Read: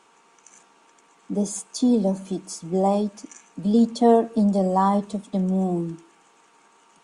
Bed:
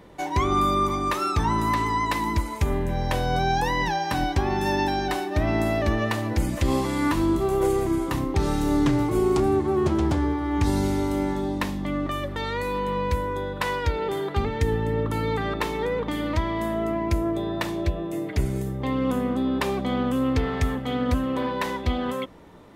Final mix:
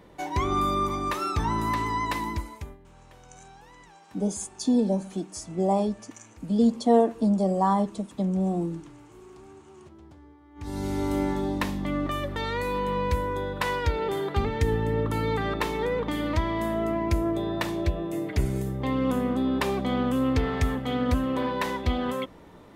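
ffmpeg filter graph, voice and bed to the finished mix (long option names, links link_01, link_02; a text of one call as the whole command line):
ffmpeg -i stem1.wav -i stem2.wav -filter_complex "[0:a]adelay=2850,volume=-3dB[link_01];[1:a]volume=23dB,afade=type=out:start_time=2.16:duration=0.61:silence=0.0630957,afade=type=in:start_time=10.55:duration=0.59:silence=0.0473151[link_02];[link_01][link_02]amix=inputs=2:normalize=0" out.wav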